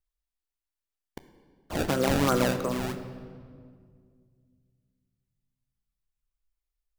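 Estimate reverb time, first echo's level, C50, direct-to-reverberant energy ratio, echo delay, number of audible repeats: 2.0 s, none, 10.0 dB, 9.0 dB, none, none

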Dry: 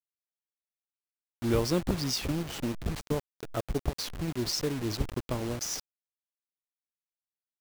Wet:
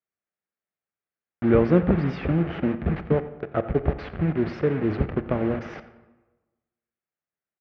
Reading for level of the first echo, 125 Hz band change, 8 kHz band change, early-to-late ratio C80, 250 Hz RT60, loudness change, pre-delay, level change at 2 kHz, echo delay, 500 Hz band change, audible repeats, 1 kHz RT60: -17.5 dB, +8.0 dB, under -25 dB, 13.5 dB, 1.2 s, +7.5 dB, 27 ms, +6.5 dB, 88 ms, +9.5 dB, 1, 1.2 s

